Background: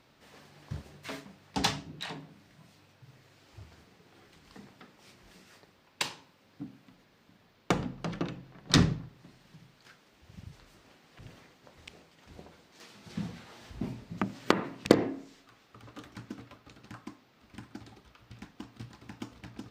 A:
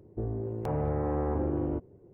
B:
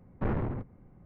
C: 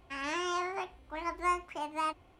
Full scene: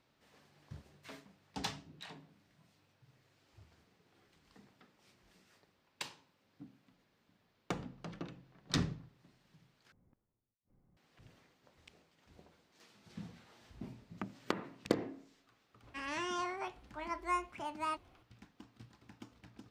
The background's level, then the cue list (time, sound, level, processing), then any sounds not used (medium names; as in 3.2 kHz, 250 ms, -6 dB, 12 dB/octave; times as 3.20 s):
background -11 dB
9.92 s: replace with B -16 dB + inverted gate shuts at -41 dBFS, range -41 dB
15.84 s: add C -4.5 dB
not used: A